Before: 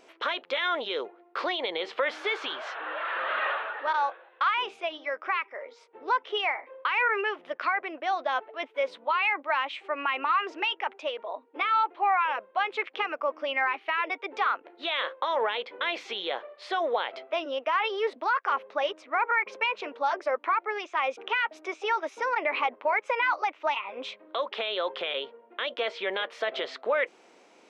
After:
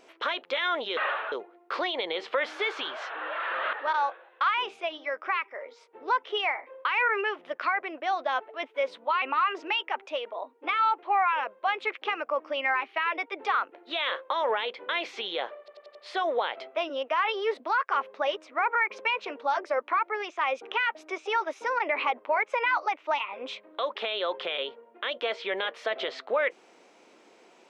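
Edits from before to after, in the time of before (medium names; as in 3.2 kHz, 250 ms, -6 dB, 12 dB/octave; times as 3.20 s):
3.38–3.73 s: move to 0.97 s
9.22–10.14 s: delete
16.51 s: stutter 0.09 s, 5 plays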